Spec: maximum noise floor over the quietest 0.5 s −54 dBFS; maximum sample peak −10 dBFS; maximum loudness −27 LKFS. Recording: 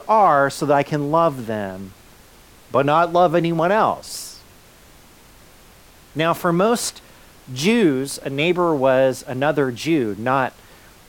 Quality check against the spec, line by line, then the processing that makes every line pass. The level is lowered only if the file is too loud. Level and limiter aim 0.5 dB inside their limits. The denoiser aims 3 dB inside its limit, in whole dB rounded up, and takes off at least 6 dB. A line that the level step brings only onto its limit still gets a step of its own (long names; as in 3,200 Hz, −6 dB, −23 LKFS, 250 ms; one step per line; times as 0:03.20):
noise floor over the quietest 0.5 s −47 dBFS: out of spec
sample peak −5.5 dBFS: out of spec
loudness −19.0 LKFS: out of spec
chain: level −8.5 dB